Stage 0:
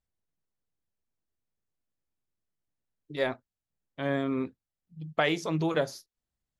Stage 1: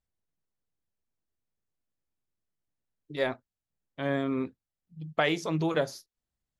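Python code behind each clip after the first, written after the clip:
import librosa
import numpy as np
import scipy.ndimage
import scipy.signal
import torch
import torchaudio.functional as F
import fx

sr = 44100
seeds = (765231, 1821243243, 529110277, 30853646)

y = x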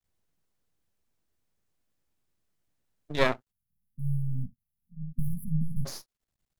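y = np.maximum(x, 0.0)
y = fx.spec_erase(y, sr, start_s=3.51, length_s=2.35, low_hz=250.0, high_hz=9600.0)
y = y * 10.0 ** (8.0 / 20.0)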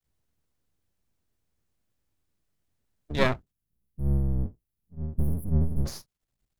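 y = fx.octave_divider(x, sr, octaves=1, level_db=4.0)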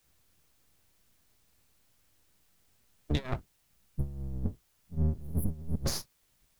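y = fx.over_compress(x, sr, threshold_db=-30.0, ratio=-0.5)
y = fx.quant_dither(y, sr, seeds[0], bits=12, dither='triangular')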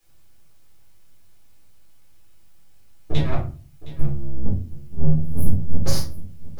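y = x + 10.0 ** (-16.5 / 20.0) * np.pad(x, (int(714 * sr / 1000.0), 0))[:len(x)]
y = fx.room_shoebox(y, sr, seeds[1], volume_m3=230.0, walls='furnished', distance_m=4.0)
y = y * 10.0 ** (-1.0 / 20.0)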